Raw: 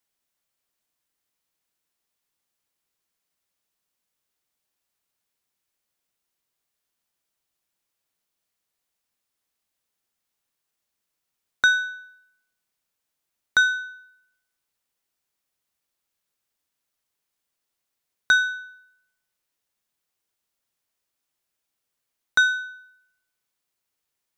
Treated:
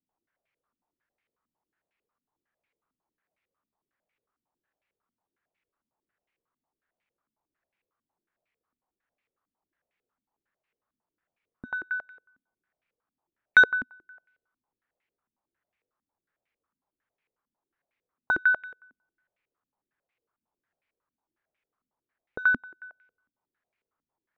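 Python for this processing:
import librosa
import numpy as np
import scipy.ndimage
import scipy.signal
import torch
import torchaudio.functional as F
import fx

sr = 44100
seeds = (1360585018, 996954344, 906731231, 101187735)

y = fx.filter_held_lowpass(x, sr, hz=11.0, low_hz=250.0, high_hz=2300.0)
y = y * librosa.db_to_amplitude(-1.5)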